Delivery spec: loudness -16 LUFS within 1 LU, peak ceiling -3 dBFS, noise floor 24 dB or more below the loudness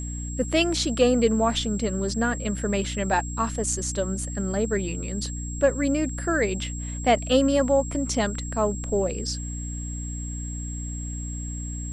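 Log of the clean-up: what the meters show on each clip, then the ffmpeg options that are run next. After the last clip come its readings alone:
hum 60 Hz; highest harmonic 300 Hz; hum level -30 dBFS; steady tone 7.6 kHz; tone level -37 dBFS; loudness -25.5 LUFS; peak level -7.0 dBFS; loudness target -16.0 LUFS
-> -af "bandreject=f=60:t=h:w=6,bandreject=f=120:t=h:w=6,bandreject=f=180:t=h:w=6,bandreject=f=240:t=h:w=6,bandreject=f=300:t=h:w=6"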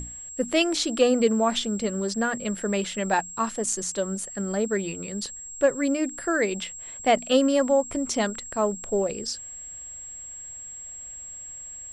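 hum not found; steady tone 7.6 kHz; tone level -37 dBFS
-> -af "bandreject=f=7600:w=30"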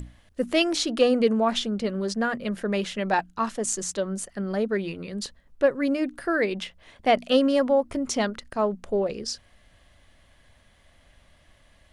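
steady tone not found; loudness -25.5 LUFS; peak level -8.5 dBFS; loudness target -16.0 LUFS
-> -af "volume=2.99,alimiter=limit=0.708:level=0:latency=1"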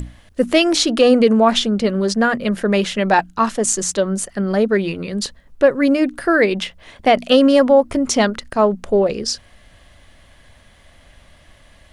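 loudness -16.5 LUFS; peak level -3.0 dBFS; noise floor -50 dBFS

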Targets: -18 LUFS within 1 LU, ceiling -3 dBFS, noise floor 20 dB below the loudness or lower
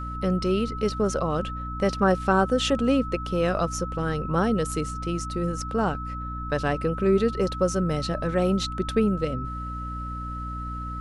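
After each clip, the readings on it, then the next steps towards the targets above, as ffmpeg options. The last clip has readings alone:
hum 60 Hz; highest harmonic 300 Hz; hum level -32 dBFS; steady tone 1.3 kHz; tone level -34 dBFS; loudness -26.0 LUFS; peak level -8.0 dBFS; loudness target -18.0 LUFS
-> -af "bandreject=f=60:t=h:w=6,bandreject=f=120:t=h:w=6,bandreject=f=180:t=h:w=6,bandreject=f=240:t=h:w=6,bandreject=f=300:t=h:w=6"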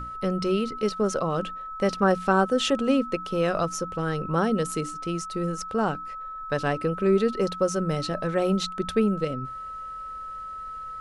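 hum not found; steady tone 1.3 kHz; tone level -34 dBFS
-> -af "bandreject=f=1300:w=30"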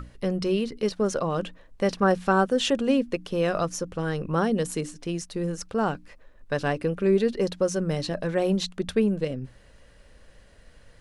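steady tone not found; loudness -26.0 LUFS; peak level -8.5 dBFS; loudness target -18.0 LUFS
-> -af "volume=2.51,alimiter=limit=0.708:level=0:latency=1"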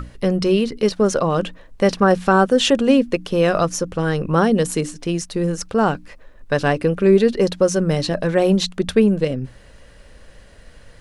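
loudness -18.5 LUFS; peak level -3.0 dBFS; noise floor -46 dBFS

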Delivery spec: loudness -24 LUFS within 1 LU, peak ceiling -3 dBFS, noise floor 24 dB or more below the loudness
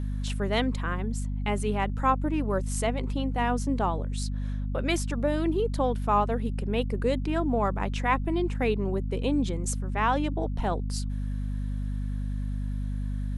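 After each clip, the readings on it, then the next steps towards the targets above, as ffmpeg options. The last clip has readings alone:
hum 50 Hz; highest harmonic 250 Hz; hum level -28 dBFS; loudness -28.5 LUFS; peak level -10.5 dBFS; loudness target -24.0 LUFS
-> -af "bandreject=f=50:t=h:w=4,bandreject=f=100:t=h:w=4,bandreject=f=150:t=h:w=4,bandreject=f=200:t=h:w=4,bandreject=f=250:t=h:w=4"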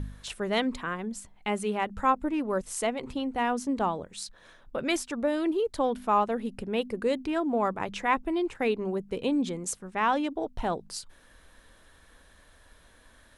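hum not found; loudness -29.5 LUFS; peak level -11.5 dBFS; loudness target -24.0 LUFS
-> -af "volume=1.88"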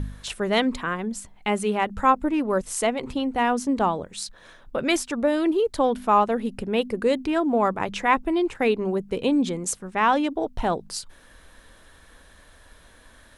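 loudness -24.0 LUFS; peak level -6.0 dBFS; noise floor -52 dBFS

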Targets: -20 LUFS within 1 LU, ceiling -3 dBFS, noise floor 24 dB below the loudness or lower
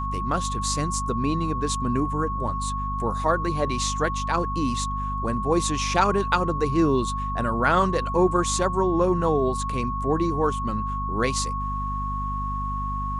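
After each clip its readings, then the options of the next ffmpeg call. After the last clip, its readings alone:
hum 50 Hz; highest harmonic 250 Hz; hum level -28 dBFS; steady tone 1.1 kHz; tone level -28 dBFS; loudness -24.5 LUFS; peak level -6.5 dBFS; loudness target -20.0 LUFS
-> -af "bandreject=f=50:t=h:w=6,bandreject=f=100:t=h:w=6,bandreject=f=150:t=h:w=6,bandreject=f=200:t=h:w=6,bandreject=f=250:t=h:w=6"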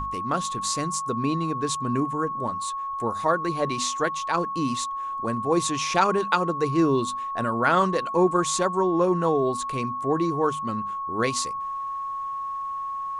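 hum not found; steady tone 1.1 kHz; tone level -28 dBFS
-> -af "bandreject=f=1100:w=30"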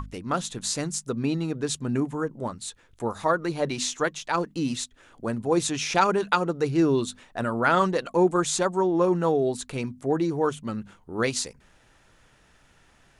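steady tone not found; loudness -26.0 LUFS; peak level -7.0 dBFS; loudness target -20.0 LUFS
-> -af "volume=2,alimiter=limit=0.708:level=0:latency=1"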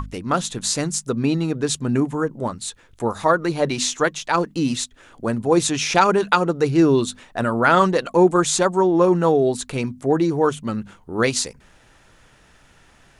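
loudness -20.0 LUFS; peak level -3.0 dBFS; noise floor -54 dBFS

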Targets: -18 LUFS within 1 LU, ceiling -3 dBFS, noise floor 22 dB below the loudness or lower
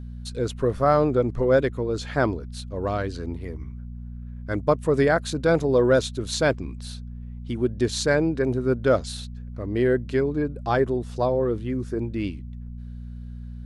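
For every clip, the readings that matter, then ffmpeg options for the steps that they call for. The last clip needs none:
hum 60 Hz; highest harmonic 240 Hz; hum level -33 dBFS; loudness -24.0 LUFS; peak level -7.0 dBFS; loudness target -18.0 LUFS
-> -af "bandreject=f=60:t=h:w=4,bandreject=f=120:t=h:w=4,bandreject=f=180:t=h:w=4,bandreject=f=240:t=h:w=4"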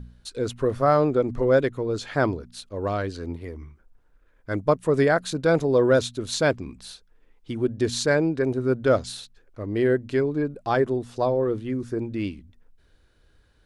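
hum not found; loudness -24.0 LUFS; peak level -7.5 dBFS; loudness target -18.0 LUFS
-> -af "volume=2,alimiter=limit=0.708:level=0:latency=1"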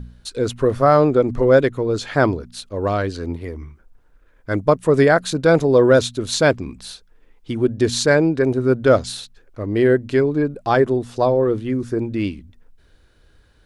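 loudness -18.0 LUFS; peak level -3.0 dBFS; noise floor -54 dBFS

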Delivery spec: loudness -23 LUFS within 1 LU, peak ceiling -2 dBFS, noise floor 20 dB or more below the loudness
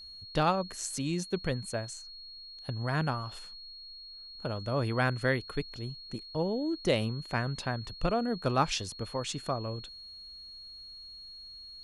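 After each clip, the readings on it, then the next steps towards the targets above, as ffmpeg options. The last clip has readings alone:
steady tone 4.3 kHz; tone level -45 dBFS; loudness -32.5 LUFS; peak level -13.0 dBFS; loudness target -23.0 LUFS
-> -af "bandreject=f=4300:w=30"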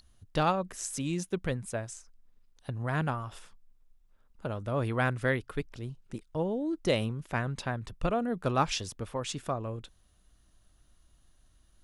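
steady tone not found; loudness -32.5 LUFS; peak level -13.0 dBFS; loudness target -23.0 LUFS
-> -af "volume=2.99"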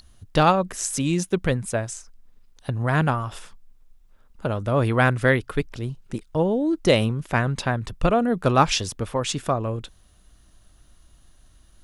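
loudness -23.0 LUFS; peak level -3.5 dBFS; noise floor -55 dBFS

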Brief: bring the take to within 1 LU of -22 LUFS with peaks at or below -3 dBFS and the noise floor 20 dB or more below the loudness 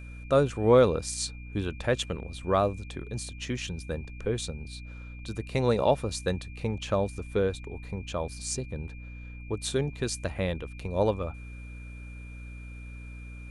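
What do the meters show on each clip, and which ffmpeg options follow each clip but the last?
hum 60 Hz; highest harmonic 300 Hz; hum level -40 dBFS; steady tone 2.4 kHz; tone level -50 dBFS; loudness -29.5 LUFS; peak level -9.0 dBFS; loudness target -22.0 LUFS
-> -af "bandreject=f=60:t=h:w=4,bandreject=f=120:t=h:w=4,bandreject=f=180:t=h:w=4,bandreject=f=240:t=h:w=4,bandreject=f=300:t=h:w=4"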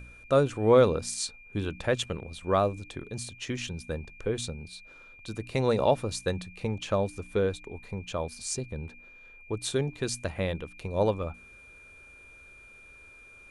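hum not found; steady tone 2.4 kHz; tone level -50 dBFS
-> -af "bandreject=f=2400:w=30"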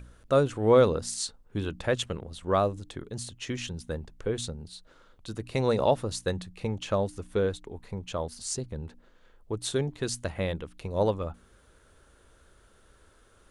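steady tone not found; loudness -29.5 LUFS; peak level -9.5 dBFS; loudness target -22.0 LUFS
-> -af "volume=2.37,alimiter=limit=0.708:level=0:latency=1"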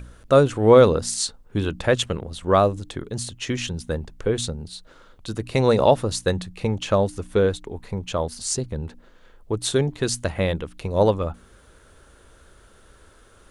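loudness -22.0 LUFS; peak level -3.0 dBFS; noise floor -53 dBFS

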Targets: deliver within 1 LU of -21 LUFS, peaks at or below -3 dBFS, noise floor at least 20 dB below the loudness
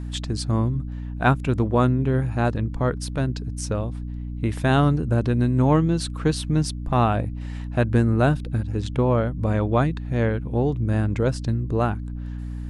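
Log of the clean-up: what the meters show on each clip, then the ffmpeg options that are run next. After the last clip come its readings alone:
hum 60 Hz; highest harmonic 300 Hz; hum level -29 dBFS; loudness -23.0 LUFS; peak level -5.0 dBFS; loudness target -21.0 LUFS
-> -af "bandreject=f=60:t=h:w=6,bandreject=f=120:t=h:w=6,bandreject=f=180:t=h:w=6,bandreject=f=240:t=h:w=6,bandreject=f=300:t=h:w=6"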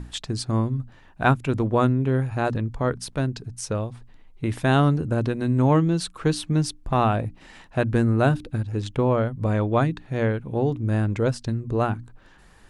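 hum not found; loudness -24.0 LUFS; peak level -4.0 dBFS; loudness target -21.0 LUFS
-> -af "volume=1.41,alimiter=limit=0.708:level=0:latency=1"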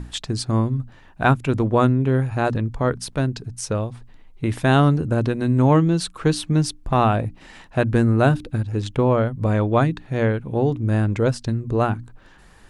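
loudness -21.0 LUFS; peak level -3.0 dBFS; noise floor -48 dBFS

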